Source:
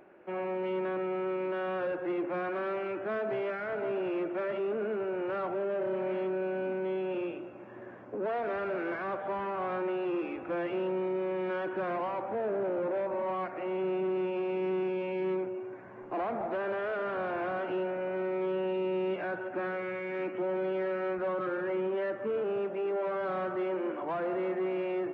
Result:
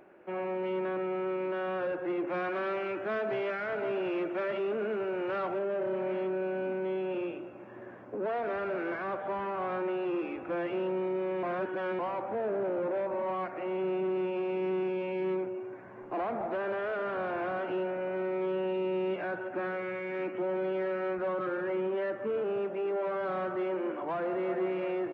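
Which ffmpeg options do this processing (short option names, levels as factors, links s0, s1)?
-filter_complex "[0:a]asettb=1/sr,asplit=3[s0][s1][s2];[s0]atrim=end=2.274[s3];[s1]atrim=start=2.27:end=5.59,asetpts=PTS-STARTPTS,afade=t=in:d=0.004:c=qsin,afade=t=out:st=3.316:d=0.004:c=qsin,highshelf=f=2300:g=7.5[s4];[s2]atrim=start=5.586[s5];[s3][s4]acrossfade=d=0.004:c1=hsin:c2=qsin[s6];[s6][s5]acrossfade=d=0.004:c1=qsin:c2=hsin,asplit=2[s7][s8];[s8]afade=t=in:st=24.14:d=0.01,afade=t=out:st=24.54:d=0.01,aecho=0:1:340|680|1020|1360|1700|2040|2380|2720:0.398107|0.238864|0.143319|0.0859911|0.0515947|0.0309568|0.0185741|0.0111445[s9];[s7][s9]amix=inputs=2:normalize=0,asplit=3[s10][s11][s12];[s10]atrim=end=11.432[s13];[s11]atrim=start=11.428:end=11.992,asetpts=PTS-STARTPTS,areverse[s14];[s12]atrim=start=11.988[s15];[s13][s14]acrossfade=d=0.004:c1=hsin:c2=hsin[s16];[s16][s15]acrossfade=d=0.004:c1=hsin:c2=hsin"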